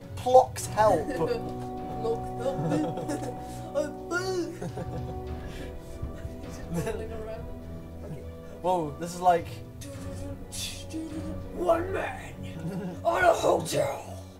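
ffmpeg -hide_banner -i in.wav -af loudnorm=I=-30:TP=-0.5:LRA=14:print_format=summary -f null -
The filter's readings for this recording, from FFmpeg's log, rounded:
Input Integrated:    -28.8 LUFS
Input True Peak:      -5.9 dBTP
Input LRA:             6.8 LU
Input Threshold:     -39.5 LUFS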